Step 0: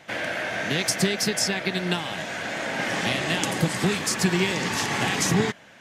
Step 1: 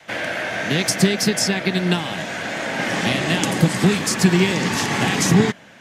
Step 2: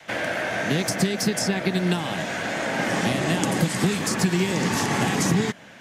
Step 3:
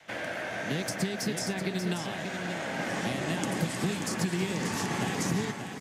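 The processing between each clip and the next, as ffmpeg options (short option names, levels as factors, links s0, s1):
-af "adynamicequalizer=threshold=0.02:dfrequency=200:dqfactor=0.8:tfrequency=200:tqfactor=0.8:attack=5:release=100:ratio=0.375:range=2.5:mode=boostabove:tftype=bell,volume=1.5"
-filter_complex "[0:a]acrossover=split=1600|5700[s0][s1][s2];[s0]acompressor=threshold=0.112:ratio=4[s3];[s1]acompressor=threshold=0.0224:ratio=4[s4];[s2]acompressor=threshold=0.0355:ratio=4[s5];[s3][s4][s5]amix=inputs=3:normalize=0"
-af "aecho=1:1:586:0.422,volume=0.376"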